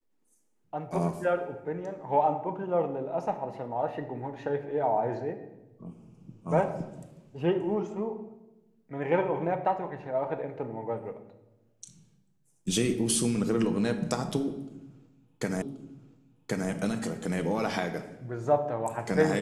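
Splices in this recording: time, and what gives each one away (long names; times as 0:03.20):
0:15.62: the same again, the last 1.08 s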